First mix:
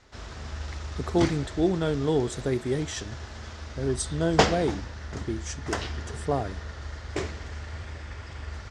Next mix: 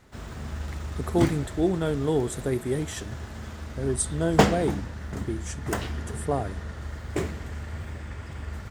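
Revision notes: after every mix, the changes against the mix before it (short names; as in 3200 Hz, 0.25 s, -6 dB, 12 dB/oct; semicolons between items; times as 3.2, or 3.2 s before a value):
background: add bell 180 Hz +8.5 dB 1.4 oct; master: remove synth low-pass 5500 Hz, resonance Q 1.8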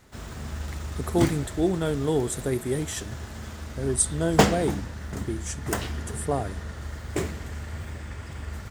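master: add high shelf 4900 Hz +6.5 dB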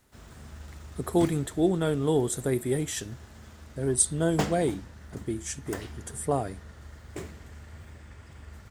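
background -10.5 dB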